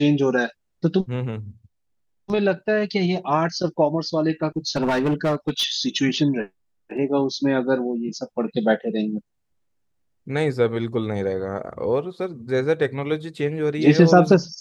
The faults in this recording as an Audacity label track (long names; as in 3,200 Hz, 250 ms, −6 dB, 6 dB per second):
4.670000	5.650000	clipping −17 dBFS